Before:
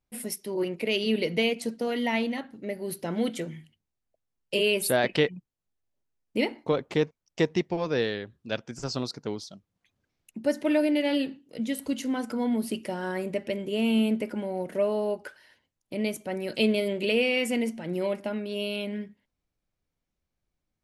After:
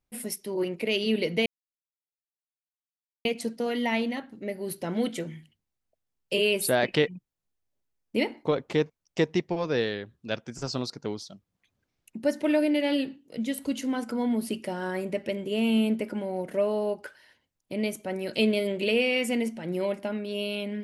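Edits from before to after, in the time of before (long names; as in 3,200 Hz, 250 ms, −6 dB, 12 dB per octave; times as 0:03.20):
0:01.46: splice in silence 1.79 s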